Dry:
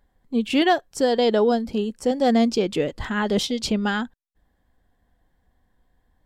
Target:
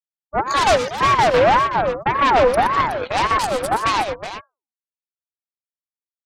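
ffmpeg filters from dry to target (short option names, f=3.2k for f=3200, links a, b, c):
-filter_complex "[0:a]bandreject=f=3.3k:w=10,afftfilt=real='re*gte(hypot(re,im),0.0562)':imag='im*gte(hypot(re,im),0.0562)':win_size=1024:overlap=0.75,bandreject=f=50:t=h:w=6,bandreject=f=100:t=h:w=6,bandreject=f=150:t=h:w=6,bandreject=f=200:t=h:w=6,bandreject=f=250:t=h:w=6,bandreject=f=300:t=h:w=6,afreqshift=20,adynamicequalizer=threshold=0.00355:dfrequency=8600:dqfactor=1.4:tfrequency=8600:tqfactor=1.4:attack=5:release=100:ratio=0.375:range=2.5:mode=boostabove:tftype=bell,acrossover=split=990[a][b];[b]acontrast=77[c];[a][c]amix=inputs=2:normalize=0,aemphasis=mode=reproduction:type=75kf,aeval=exprs='0.501*(cos(1*acos(clip(val(0)/0.501,-1,1)))-cos(1*PI/2))+0.0631*(cos(4*acos(clip(val(0)/0.501,-1,1)))-cos(4*PI/2))+0.0112*(cos(5*acos(clip(val(0)/0.501,-1,1)))-cos(5*PI/2))+0.0708*(cos(7*acos(clip(val(0)/0.501,-1,1)))-cos(7*PI/2))+0.2*(cos(8*acos(clip(val(0)/0.501,-1,1)))-cos(8*PI/2))':c=same,asoftclip=type=tanh:threshold=-5dB,asplit=2[d][e];[e]aecho=0:1:85|122|371:0.2|0.355|0.316[f];[d][f]amix=inputs=2:normalize=0,aeval=exprs='val(0)*sin(2*PI*810*n/s+810*0.4/1.8*sin(2*PI*1.8*n/s))':c=same,volume=-1.5dB"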